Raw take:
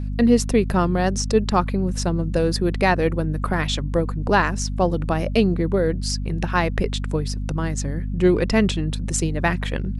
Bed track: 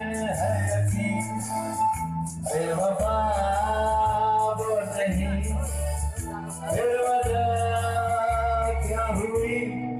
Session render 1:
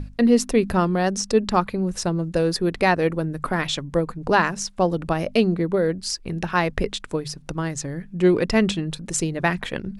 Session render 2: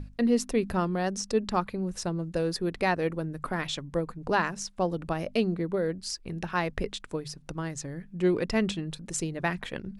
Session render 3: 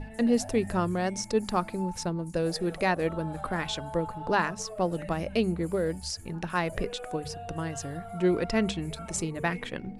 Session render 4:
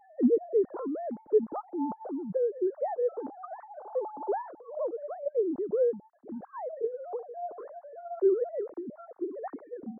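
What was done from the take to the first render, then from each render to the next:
mains-hum notches 50/100/150/200/250 Hz
level −7.5 dB
mix in bed track −17 dB
three sine waves on the formant tracks; Gaussian smoothing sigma 9.4 samples

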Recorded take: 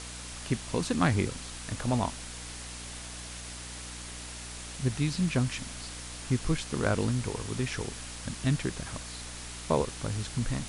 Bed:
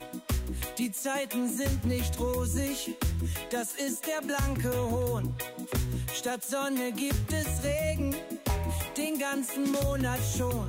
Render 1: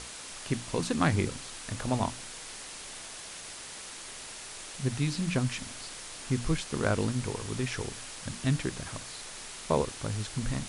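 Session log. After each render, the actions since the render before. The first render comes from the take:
mains-hum notches 60/120/180/240/300 Hz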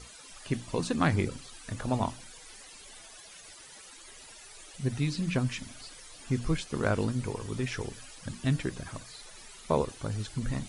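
broadband denoise 14 dB, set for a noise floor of −44 dBFS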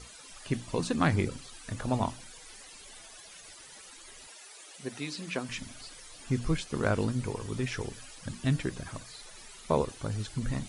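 0:04.28–0:05.49: high-pass filter 340 Hz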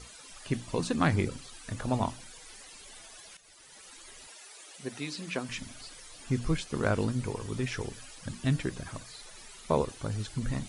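0:03.37–0:03.95: fade in, from −12 dB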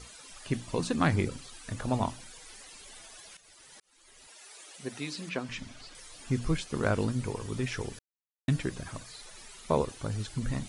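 0:03.80–0:04.54: fade in
0:05.29–0:05.95: high-frequency loss of the air 69 metres
0:07.99–0:08.48: silence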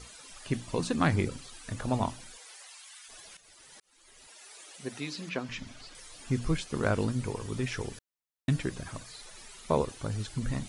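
0:02.36–0:03.08: high-pass filter 360 Hz → 1,300 Hz 24 dB per octave
0:05.00–0:05.67: parametric band 8,800 Hz −7.5 dB 0.3 octaves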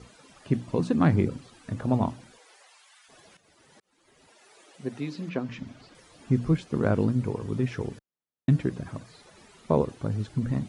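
high-pass filter 150 Hz 12 dB per octave
spectral tilt −3.5 dB per octave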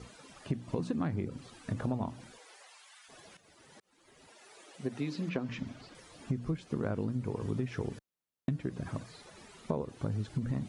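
downward compressor 16 to 1, threshold −29 dBFS, peak gain reduction 14 dB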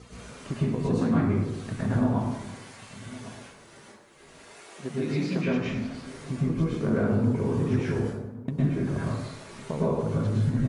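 slap from a distant wall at 190 metres, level −17 dB
dense smooth reverb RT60 0.95 s, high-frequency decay 0.55×, pre-delay 95 ms, DRR −8.5 dB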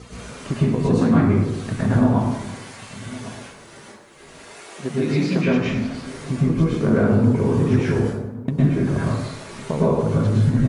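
level +7.5 dB

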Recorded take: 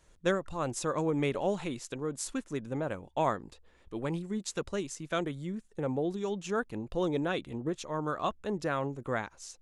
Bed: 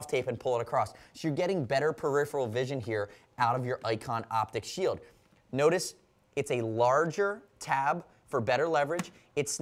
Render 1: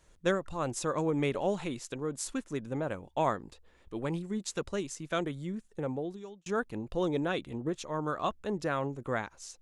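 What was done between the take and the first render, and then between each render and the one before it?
0:05.73–0:06.46: fade out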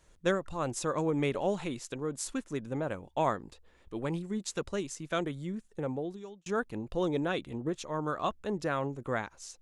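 no processing that can be heard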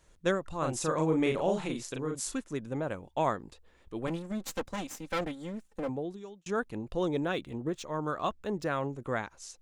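0:00.58–0:02.38: double-tracking delay 38 ms −3 dB
0:04.07–0:05.89: lower of the sound and its delayed copy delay 3.8 ms
0:07.16–0:08.69: running median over 3 samples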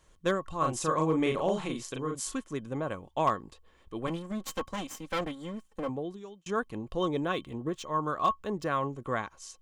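hollow resonant body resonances 1,100/3,100 Hz, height 15 dB, ringing for 95 ms
hard clipping −17.5 dBFS, distortion −30 dB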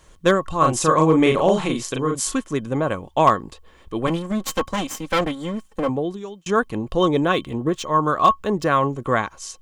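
level +11.5 dB

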